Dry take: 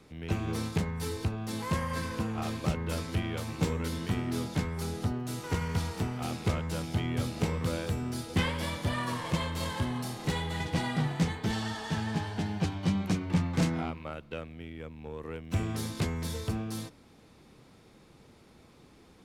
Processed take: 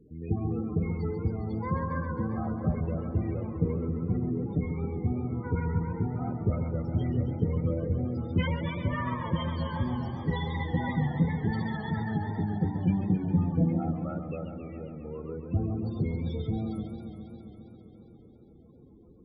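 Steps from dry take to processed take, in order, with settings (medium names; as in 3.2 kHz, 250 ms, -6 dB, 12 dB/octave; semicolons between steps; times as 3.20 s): loudest bins only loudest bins 16; modulated delay 135 ms, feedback 80%, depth 138 cents, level -9.5 dB; trim +2 dB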